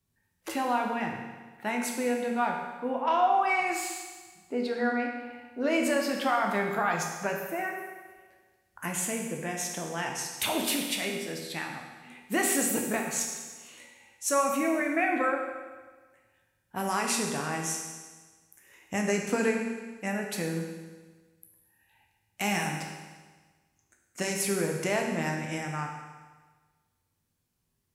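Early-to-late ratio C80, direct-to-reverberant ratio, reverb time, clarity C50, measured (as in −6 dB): 5.5 dB, 1.0 dB, 1.4 s, 3.5 dB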